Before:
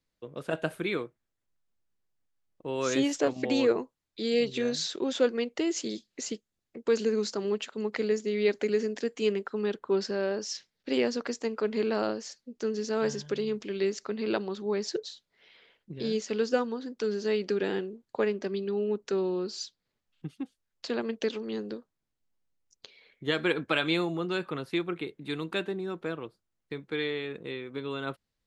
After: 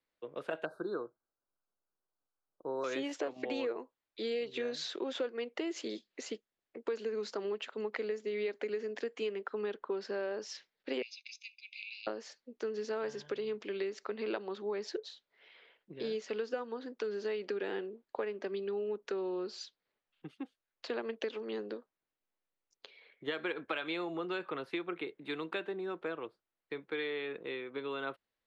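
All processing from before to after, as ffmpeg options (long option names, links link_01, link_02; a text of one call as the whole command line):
ffmpeg -i in.wav -filter_complex "[0:a]asettb=1/sr,asplit=3[link_01][link_02][link_03];[link_01]atrim=end=0.654[link_04];[link_02]atrim=start=0.65:end=2.84,asetpts=PTS-STARTPTS,afade=type=in:duration=0.004:curve=qsin,afade=type=out:start_time=2.186:duration=0.004:curve=qsin,asuperstop=centerf=2500:order=20:qfactor=1.1,highshelf=frequency=5100:gain=-8.5[link_05];[link_03]atrim=start=2.836[link_06];[link_04][link_05]acrossfade=duration=0.004:curve1=hsin:curve2=qsin[link_07];[link_07][link_06]acrossfade=duration=0.004:curve1=qsin:curve2=hsin,asettb=1/sr,asplit=3[link_08][link_09][link_10];[link_08]atrim=end=11.024[link_11];[link_09]atrim=start=11.02:end=12.07,asetpts=PTS-STARTPTS,afade=type=in:duration=0.004:curve=qsin,afade=type=out:start_time=1.046:duration=0.004:curve=qsin,asuperpass=centerf=3900:order=20:qfactor=0.88,aecho=1:1:0.8:0.67,atrim=end_sample=46305[link_12];[link_10]atrim=start=12.066[link_13];[link_11][link_12]acrossfade=duration=0.004:curve1=hsin:curve2=qsin[link_14];[link_14][link_13]acrossfade=duration=0.004:curve1=qsin:curve2=hsin,acrossover=split=310 3700:gain=0.178 1 0.2[link_15][link_16][link_17];[link_15][link_16][link_17]amix=inputs=3:normalize=0,acompressor=threshold=-33dB:ratio=6" out.wav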